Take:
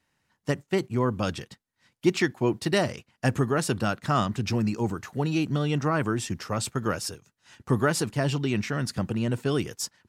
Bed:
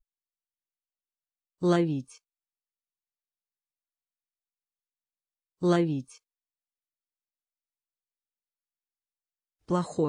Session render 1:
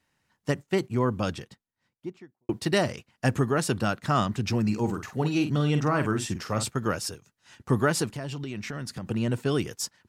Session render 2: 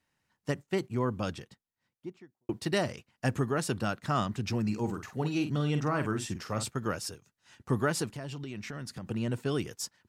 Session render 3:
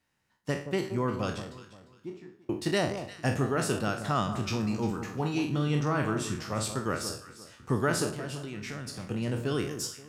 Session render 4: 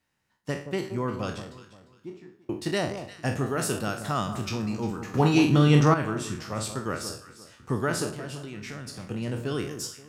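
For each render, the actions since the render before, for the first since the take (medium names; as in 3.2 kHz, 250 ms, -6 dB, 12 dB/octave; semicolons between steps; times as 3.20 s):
1.05–2.49 s: studio fade out; 4.64–6.68 s: doubling 47 ms -8.5 dB; 8.06–9.07 s: compression, threshold -31 dBFS
trim -5 dB
spectral sustain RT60 0.42 s; echo whose repeats swap between lows and highs 175 ms, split 1.2 kHz, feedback 51%, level -9 dB
3.46–4.49 s: treble shelf 9.6 kHz +11.5 dB; 5.14–5.94 s: gain +9.5 dB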